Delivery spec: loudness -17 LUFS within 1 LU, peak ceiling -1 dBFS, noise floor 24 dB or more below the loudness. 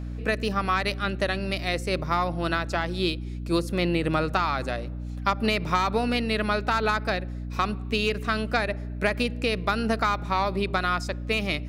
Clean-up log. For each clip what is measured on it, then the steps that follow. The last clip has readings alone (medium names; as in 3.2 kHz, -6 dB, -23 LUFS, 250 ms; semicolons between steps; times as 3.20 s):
hum 60 Hz; highest harmonic 300 Hz; hum level -31 dBFS; loudness -26.5 LUFS; peak level -9.0 dBFS; loudness target -17.0 LUFS
-> de-hum 60 Hz, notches 5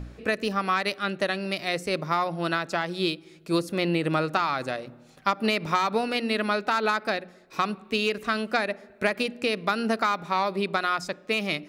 hum not found; loudness -27.0 LUFS; peak level -9.0 dBFS; loudness target -17.0 LUFS
-> trim +10 dB; peak limiter -1 dBFS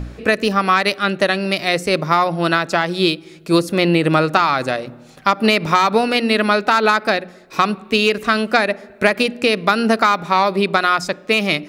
loudness -17.0 LUFS; peak level -1.0 dBFS; noise floor -43 dBFS